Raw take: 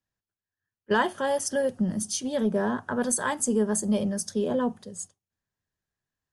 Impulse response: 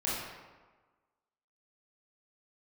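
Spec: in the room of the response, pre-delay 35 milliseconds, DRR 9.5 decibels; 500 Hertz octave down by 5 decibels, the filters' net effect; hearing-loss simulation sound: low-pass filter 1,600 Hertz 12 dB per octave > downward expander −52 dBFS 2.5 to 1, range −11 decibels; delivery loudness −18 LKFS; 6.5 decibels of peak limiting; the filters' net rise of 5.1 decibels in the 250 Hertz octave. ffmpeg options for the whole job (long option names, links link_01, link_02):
-filter_complex "[0:a]equalizer=frequency=250:width_type=o:gain=7.5,equalizer=frequency=500:width_type=o:gain=-8,alimiter=limit=-17.5dB:level=0:latency=1,asplit=2[link_01][link_02];[1:a]atrim=start_sample=2205,adelay=35[link_03];[link_02][link_03]afir=irnorm=-1:irlink=0,volume=-16.5dB[link_04];[link_01][link_04]amix=inputs=2:normalize=0,lowpass=1600,agate=range=-11dB:threshold=-52dB:ratio=2.5,volume=8.5dB"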